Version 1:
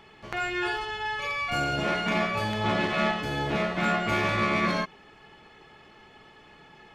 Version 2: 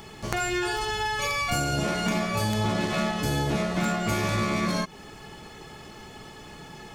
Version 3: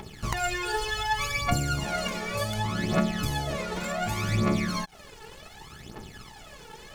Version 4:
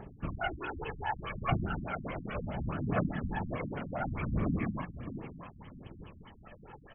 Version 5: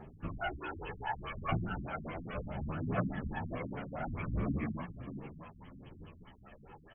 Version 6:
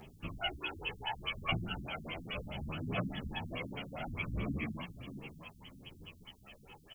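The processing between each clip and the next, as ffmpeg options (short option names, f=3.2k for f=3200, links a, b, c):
-af "equalizer=f=2.9k:t=o:w=2.1:g=-6,acompressor=threshold=-34dB:ratio=6,bass=f=250:g=5,treble=f=4k:g=15,volume=8.5dB"
-af "acompressor=threshold=-27dB:ratio=6,aeval=exprs='sgn(val(0))*max(abs(val(0))-0.00398,0)':c=same,aphaser=in_gain=1:out_gain=1:delay=2.3:decay=0.71:speed=0.67:type=triangular"
-filter_complex "[0:a]asplit=2[a][b];[b]adelay=655,lowpass=f=2k:p=1,volume=-11.5dB,asplit=2[c][d];[d]adelay=655,lowpass=f=2k:p=1,volume=0.31,asplit=2[e][f];[f]adelay=655,lowpass=f=2k:p=1,volume=0.31[g];[a][c][e][g]amix=inputs=4:normalize=0,afftfilt=real='hypot(re,im)*cos(2*PI*random(0))':imag='hypot(re,im)*sin(2*PI*random(1))':win_size=512:overlap=0.75,afftfilt=real='re*lt(b*sr/1024,270*pow(3400/270,0.5+0.5*sin(2*PI*4.8*pts/sr)))':imag='im*lt(b*sr/1024,270*pow(3400/270,0.5+0.5*sin(2*PI*4.8*pts/sr)))':win_size=1024:overlap=0.75,volume=1dB"
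-filter_complex "[0:a]asplit=2[a][b];[b]adelay=10.5,afreqshift=1.5[c];[a][c]amix=inputs=2:normalize=1"
-af "aexciter=amount=11:drive=3.3:freq=2.5k,volume=-3dB"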